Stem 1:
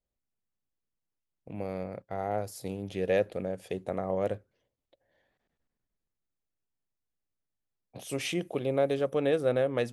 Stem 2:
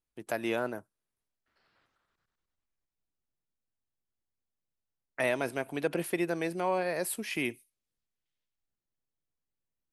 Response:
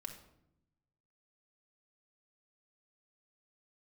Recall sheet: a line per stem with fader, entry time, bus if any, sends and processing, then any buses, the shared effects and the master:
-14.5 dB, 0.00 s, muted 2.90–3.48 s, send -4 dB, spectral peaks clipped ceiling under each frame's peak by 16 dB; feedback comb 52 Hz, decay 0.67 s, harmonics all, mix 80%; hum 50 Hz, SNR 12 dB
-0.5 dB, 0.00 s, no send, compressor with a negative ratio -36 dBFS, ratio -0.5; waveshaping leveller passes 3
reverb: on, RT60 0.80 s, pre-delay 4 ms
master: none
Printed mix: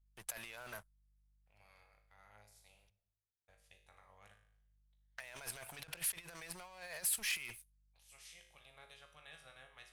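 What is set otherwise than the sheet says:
stem 2 -0.5 dB -> -8.0 dB; master: extra amplifier tone stack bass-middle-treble 10-0-10

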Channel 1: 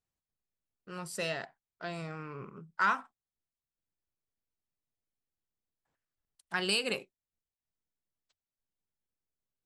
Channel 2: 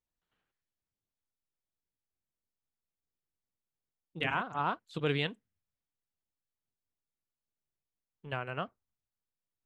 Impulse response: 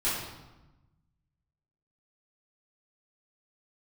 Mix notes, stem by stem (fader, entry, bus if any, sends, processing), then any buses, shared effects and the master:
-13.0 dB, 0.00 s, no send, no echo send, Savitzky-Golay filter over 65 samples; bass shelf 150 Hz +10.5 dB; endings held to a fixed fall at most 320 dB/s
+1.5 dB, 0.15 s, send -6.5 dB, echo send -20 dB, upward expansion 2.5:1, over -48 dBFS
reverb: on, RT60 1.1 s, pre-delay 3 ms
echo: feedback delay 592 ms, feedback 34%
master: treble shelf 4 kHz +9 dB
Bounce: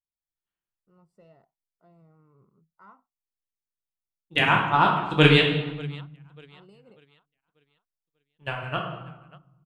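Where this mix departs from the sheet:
stem 1 -13.0 dB -> -20.0 dB; stem 2 +1.5 dB -> +12.5 dB

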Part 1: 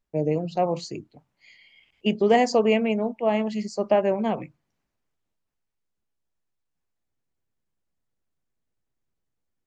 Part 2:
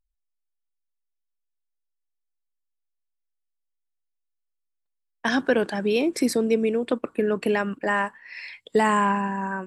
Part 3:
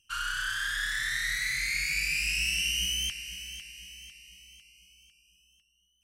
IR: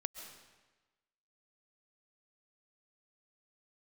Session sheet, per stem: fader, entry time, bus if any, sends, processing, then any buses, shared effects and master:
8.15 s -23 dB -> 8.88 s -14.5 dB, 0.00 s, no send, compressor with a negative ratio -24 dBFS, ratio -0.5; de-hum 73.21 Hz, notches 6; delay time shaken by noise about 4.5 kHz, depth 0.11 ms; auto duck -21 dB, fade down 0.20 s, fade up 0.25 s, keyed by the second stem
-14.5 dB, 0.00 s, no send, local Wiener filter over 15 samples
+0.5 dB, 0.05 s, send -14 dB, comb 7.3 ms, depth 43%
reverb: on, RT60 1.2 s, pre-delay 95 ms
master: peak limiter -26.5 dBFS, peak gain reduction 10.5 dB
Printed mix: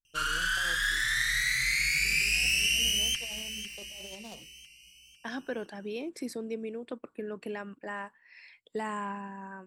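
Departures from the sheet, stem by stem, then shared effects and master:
stem 2: missing local Wiener filter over 15 samples; master: missing peak limiter -26.5 dBFS, peak gain reduction 10.5 dB

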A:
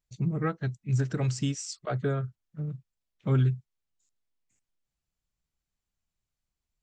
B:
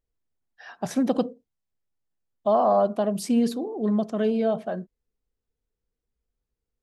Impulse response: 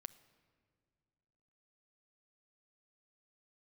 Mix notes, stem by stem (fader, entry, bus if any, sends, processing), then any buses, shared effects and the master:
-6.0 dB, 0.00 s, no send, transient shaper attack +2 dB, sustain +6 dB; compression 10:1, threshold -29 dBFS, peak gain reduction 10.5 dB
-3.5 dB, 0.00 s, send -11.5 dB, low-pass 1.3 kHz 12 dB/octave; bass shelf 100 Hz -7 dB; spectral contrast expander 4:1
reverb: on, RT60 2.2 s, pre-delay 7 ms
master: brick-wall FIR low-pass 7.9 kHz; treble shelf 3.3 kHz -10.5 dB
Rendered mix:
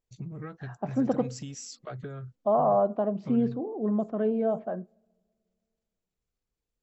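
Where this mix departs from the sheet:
stem B: missing spectral contrast expander 4:1; master: missing treble shelf 3.3 kHz -10.5 dB

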